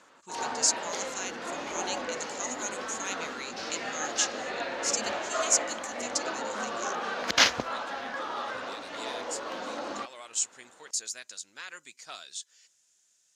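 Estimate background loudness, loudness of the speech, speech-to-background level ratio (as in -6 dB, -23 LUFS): -32.5 LUFS, -33.5 LUFS, -1.0 dB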